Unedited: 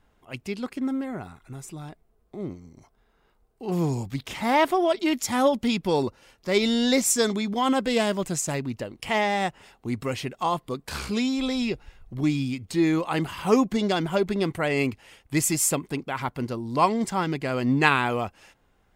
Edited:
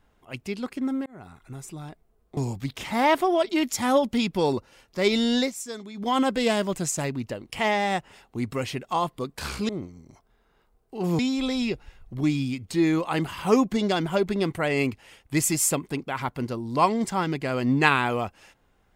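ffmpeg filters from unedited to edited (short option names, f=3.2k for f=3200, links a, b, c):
-filter_complex "[0:a]asplit=7[a][b][c][d][e][f][g];[a]atrim=end=1.06,asetpts=PTS-STARTPTS,afade=t=out:st=1.056:d=0.004:c=hsin[h];[b]atrim=start=1.06:end=2.372,asetpts=PTS-STARTPTS,afade=t=in:d=0.34[i];[c]atrim=start=3.868:end=7.01,asetpts=PTS-STARTPTS,afade=t=out:st=3.012:d=0.13:silence=0.211349[j];[d]atrim=start=7.01:end=7.44,asetpts=PTS-STARTPTS,volume=-13.5dB[k];[e]atrim=start=7.44:end=11.192,asetpts=PTS-STARTPTS,afade=t=in:d=0.13:silence=0.211349[l];[f]atrim=start=2.368:end=3.872[m];[g]atrim=start=11.188[n];[h][i]concat=n=2:v=0:a=1[o];[j][k][l]concat=n=3:v=0:a=1[p];[o][p]acrossfade=d=0.004:c1=hsin:c2=hsin[q];[q][m]acrossfade=d=0.004:c1=hsin:c2=hsin[r];[r][n]acrossfade=d=0.004:c1=hsin:c2=hsin"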